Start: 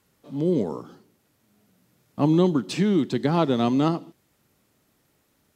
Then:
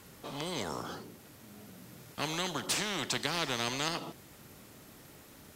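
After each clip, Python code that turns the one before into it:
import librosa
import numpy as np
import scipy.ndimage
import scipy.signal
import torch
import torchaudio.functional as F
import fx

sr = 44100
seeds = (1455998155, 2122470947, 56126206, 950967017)

y = fx.spectral_comp(x, sr, ratio=4.0)
y = F.gain(torch.from_numpy(y), -6.5).numpy()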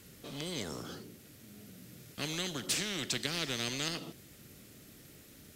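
y = fx.peak_eq(x, sr, hz=930.0, db=-12.5, octaves=1.1)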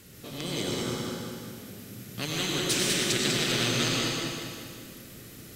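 y = fx.echo_feedback(x, sr, ms=198, feedback_pct=50, wet_db=-5)
y = fx.rev_plate(y, sr, seeds[0], rt60_s=1.6, hf_ratio=0.8, predelay_ms=80, drr_db=-1.5)
y = F.gain(torch.from_numpy(y), 3.5).numpy()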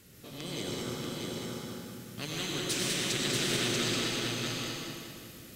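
y = x + 10.0 ** (-3.0 / 20.0) * np.pad(x, (int(637 * sr / 1000.0), 0))[:len(x)]
y = F.gain(torch.from_numpy(y), -5.5).numpy()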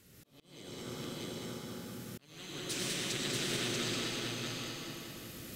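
y = fx.recorder_agc(x, sr, target_db=-26.5, rise_db_per_s=10.0, max_gain_db=30)
y = fx.auto_swell(y, sr, attack_ms=602.0)
y = F.gain(torch.from_numpy(y), -5.0).numpy()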